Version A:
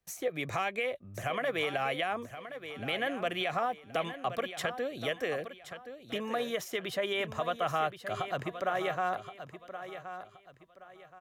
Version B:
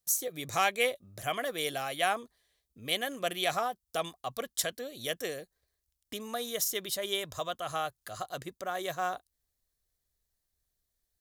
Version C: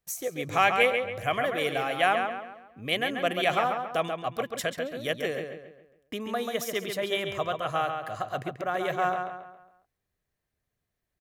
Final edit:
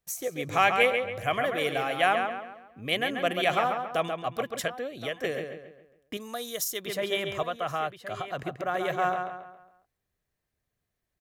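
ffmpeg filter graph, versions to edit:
-filter_complex "[0:a]asplit=2[a][b];[2:a]asplit=4[c][d][e][f];[c]atrim=end=4.682[g];[a]atrim=start=4.678:end=5.242[h];[d]atrim=start=5.238:end=6.172[i];[1:a]atrim=start=6.168:end=6.862[j];[e]atrim=start=6.858:end=7.432[k];[b]atrim=start=7.428:end=8.432[l];[f]atrim=start=8.428[m];[g][h]acrossfade=d=0.004:c1=hsin:c2=hsin[n];[n][i]acrossfade=d=0.004:c1=hsin:c2=hsin[o];[o][j]acrossfade=d=0.004:c1=hsin:c2=hsin[p];[p][k]acrossfade=d=0.004:c1=hsin:c2=hsin[q];[q][l]acrossfade=d=0.004:c1=hsin:c2=hsin[r];[r][m]acrossfade=d=0.004:c1=hsin:c2=hsin"

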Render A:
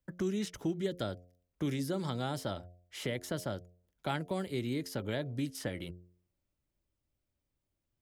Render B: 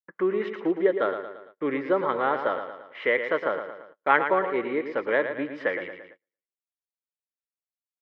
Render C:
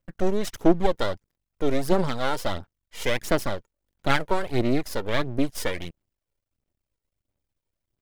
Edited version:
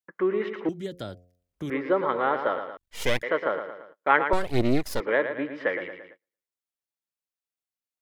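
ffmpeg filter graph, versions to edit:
-filter_complex "[2:a]asplit=2[a][b];[1:a]asplit=4[c][d][e][f];[c]atrim=end=0.692[g];[0:a]atrim=start=0.688:end=1.702[h];[d]atrim=start=1.698:end=2.772[i];[a]atrim=start=2.768:end=3.232[j];[e]atrim=start=3.228:end=4.332[k];[b]atrim=start=4.328:end=5.002[l];[f]atrim=start=4.998[m];[g][h]acrossfade=d=0.004:c1=hsin:c2=hsin[n];[n][i]acrossfade=d=0.004:c1=hsin:c2=hsin[o];[o][j]acrossfade=d=0.004:c1=hsin:c2=hsin[p];[p][k]acrossfade=d=0.004:c1=hsin:c2=hsin[q];[q][l]acrossfade=d=0.004:c1=hsin:c2=hsin[r];[r][m]acrossfade=d=0.004:c1=hsin:c2=hsin"

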